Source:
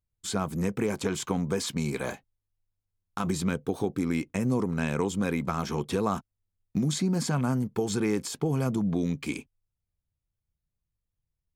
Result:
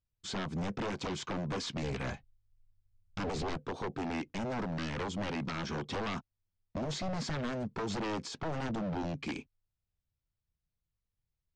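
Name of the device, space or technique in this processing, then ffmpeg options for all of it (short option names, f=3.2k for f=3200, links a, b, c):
synthesiser wavefolder: -filter_complex "[0:a]asplit=3[a][b][c];[a]afade=t=out:st=1.82:d=0.02[d];[b]asubboost=boost=10:cutoff=120,afade=t=in:st=1.82:d=0.02,afade=t=out:st=3.56:d=0.02[e];[c]afade=t=in:st=3.56:d=0.02[f];[d][e][f]amix=inputs=3:normalize=0,aeval=exprs='0.0447*(abs(mod(val(0)/0.0447+3,4)-2)-1)':c=same,lowpass=f=5.9k:w=0.5412,lowpass=f=5.9k:w=1.3066,volume=-3dB"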